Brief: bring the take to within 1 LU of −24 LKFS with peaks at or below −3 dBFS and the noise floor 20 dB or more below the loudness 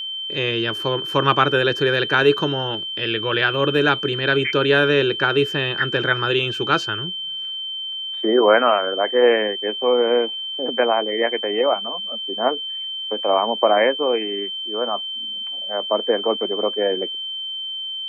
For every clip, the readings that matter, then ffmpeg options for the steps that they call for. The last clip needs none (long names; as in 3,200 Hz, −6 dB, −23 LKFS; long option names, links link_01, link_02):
interfering tone 3,100 Hz; level of the tone −26 dBFS; integrated loudness −20.0 LKFS; sample peak −1.5 dBFS; target loudness −24.0 LKFS
→ -af "bandreject=frequency=3100:width=30"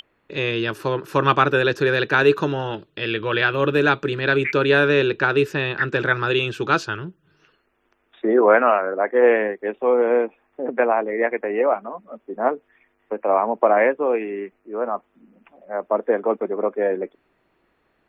interfering tone none found; integrated loudness −20.5 LKFS; sample peak −2.0 dBFS; target loudness −24.0 LKFS
→ -af "volume=-3.5dB"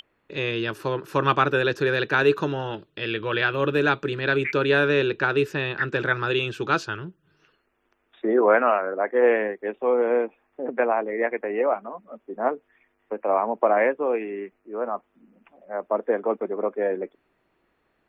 integrated loudness −24.0 LKFS; sample peak −5.5 dBFS; background noise floor −71 dBFS